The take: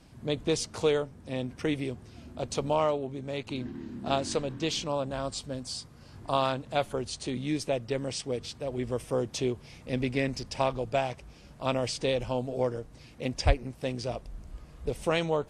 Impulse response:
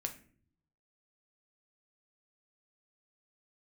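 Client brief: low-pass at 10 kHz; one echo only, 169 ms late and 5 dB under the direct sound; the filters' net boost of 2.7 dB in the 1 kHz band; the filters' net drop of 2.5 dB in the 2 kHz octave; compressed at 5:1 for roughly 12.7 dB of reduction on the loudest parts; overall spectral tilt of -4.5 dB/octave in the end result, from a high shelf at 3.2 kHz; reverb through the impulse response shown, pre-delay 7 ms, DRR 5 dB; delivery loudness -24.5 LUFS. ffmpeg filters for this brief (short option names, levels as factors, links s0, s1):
-filter_complex "[0:a]lowpass=10000,equalizer=f=1000:t=o:g=4.5,equalizer=f=2000:t=o:g=-8,highshelf=f=3200:g=8.5,acompressor=threshold=0.0282:ratio=5,aecho=1:1:169:0.562,asplit=2[s0][s1];[1:a]atrim=start_sample=2205,adelay=7[s2];[s1][s2]afir=irnorm=-1:irlink=0,volume=0.596[s3];[s0][s3]amix=inputs=2:normalize=0,volume=2.82"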